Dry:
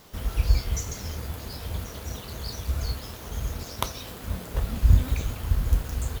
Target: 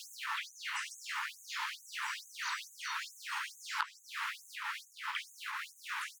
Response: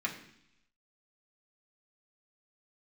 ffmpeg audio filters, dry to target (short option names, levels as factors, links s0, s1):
-filter_complex "[0:a]acrossover=split=3400[s0][s1];[s1]acompressor=threshold=0.00355:ratio=4:attack=1:release=60[s2];[s0][s2]amix=inputs=2:normalize=0,asoftclip=type=tanh:threshold=0.211,equalizer=f=1000:t=o:w=1:g=10,equalizer=f=2000:t=o:w=1:g=10,equalizer=f=8000:t=o:w=1:g=4,equalizer=f=16000:t=o:w=1:g=-11,asplit=2[s3][s4];[s4]aecho=0:1:182:0.237[s5];[s3][s5]amix=inputs=2:normalize=0,asplit=3[s6][s7][s8];[s7]asetrate=37084,aresample=44100,atempo=1.18921,volume=0.891[s9];[s8]asetrate=58866,aresample=44100,atempo=0.749154,volume=0.891[s10];[s6][s9][s10]amix=inputs=3:normalize=0,highpass=f=380:p=1,asplit=2[s11][s12];[s12]aecho=0:1:1166:0.251[s13];[s11][s13]amix=inputs=2:normalize=0,acompressor=threshold=0.0141:ratio=16,afftfilt=real='re*gte(b*sr/1024,810*pow(6300/810,0.5+0.5*sin(2*PI*2.3*pts/sr)))':imag='im*gte(b*sr/1024,810*pow(6300/810,0.5+0.5*sin(2*PI*2.3*pts/sr)))':win_size=1024:overlap=0.75,volume=1.88"